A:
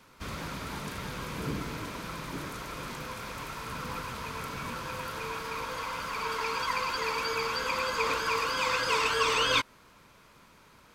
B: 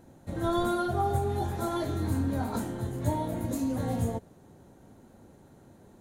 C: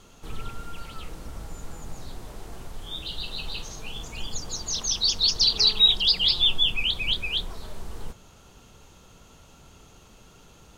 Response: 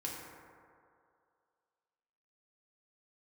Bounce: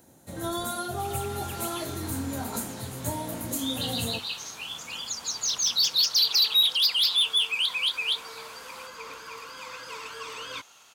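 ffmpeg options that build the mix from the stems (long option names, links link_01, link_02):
-filter_complex "[0:a]adelay=1000,volume=-12.5dB[link_01];[1:a]highshelf=frequency=3000:gain=10.5,bandreject=frequency=50:width_type=h:width=6,bandreject=frequency=100:width_type=h:width=6,bandreject=frequency=150:width_type=h:width=6,bandreject=frequency=200:width_type=h:width=6,bandreject=frequency=250:width_type=h:width=6,bandreject=frequency=300:width_type=h:width=6,bandreject=frequency=350:width_type=h:width=6,volume=-2dB[link_02];[2:a]highpass=780,asplit=2[link_03][link_04];[link_04]highpass=frequency=720:poles=1,volume=14dB,asoftclip=type=tanh:threshold=-7.5dB[link_05];[link_03][link_05]amix=inputs=2:normalize=0,lowpass=frequency=7200:poles=1,volume=-6dB,adelay=750,volume=-6.5dB[link_06];[link_01][link_02][link_06]amix=inputs=3:normalize=0,acrossover=split=320|3000[link_07][link_08][link_09];[link_08]acompressor=threshold=-30dB:ratio=6[link_10];[link_07][link_10][link_09]amix=inputs=3:normalize=0,highpass=frequency=100:poles=1,highshelf=frequency=7800:gain=6"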